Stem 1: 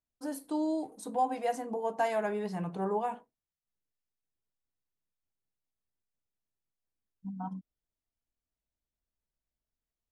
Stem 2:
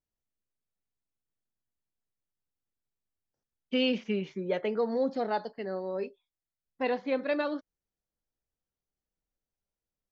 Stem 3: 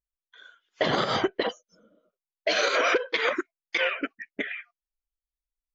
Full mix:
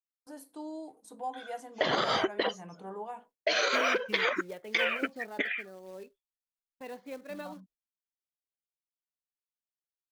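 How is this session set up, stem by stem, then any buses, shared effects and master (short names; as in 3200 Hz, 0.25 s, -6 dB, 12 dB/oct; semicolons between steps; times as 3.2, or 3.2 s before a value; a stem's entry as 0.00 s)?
-7.0 dB, 0.05 s, bus A, no send, dry
-11.0 dB, 0.00 s, no bus, no send, short-mantissa float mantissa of 2-bit; tremolo 2.7 Hz, depth 31%
+1.5 dB, 1.00 s, bus A, no send, dry
bus A: 0.0 dB, low shelf 250 Hz -8.5 dB; compressor, threshold -24 dBFS, peak gain reduction 6.5 dB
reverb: off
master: gate with hold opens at -51 dBFS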